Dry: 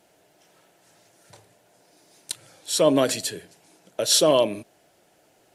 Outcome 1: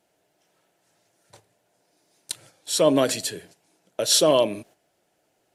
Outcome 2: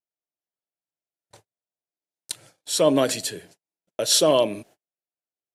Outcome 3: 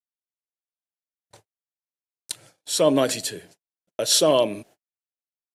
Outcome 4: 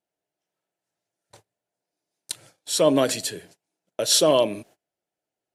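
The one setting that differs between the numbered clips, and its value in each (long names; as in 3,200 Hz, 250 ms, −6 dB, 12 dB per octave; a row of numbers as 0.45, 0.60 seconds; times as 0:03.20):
noise gate, range: −9, −43, −55, −27 decibels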